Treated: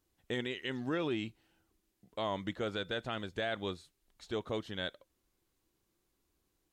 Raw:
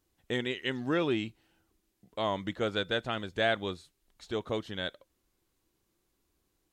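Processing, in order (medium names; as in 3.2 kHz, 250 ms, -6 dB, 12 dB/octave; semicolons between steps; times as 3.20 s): peak limiter -22 dBFS, peak gain reduction 6.5 dB; trim -2.5 dB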